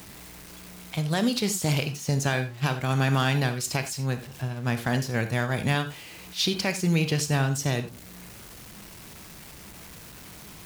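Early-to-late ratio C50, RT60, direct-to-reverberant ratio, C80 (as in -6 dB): 12.0 dB, no single decay rate, 9.0 dB, 16.5 dB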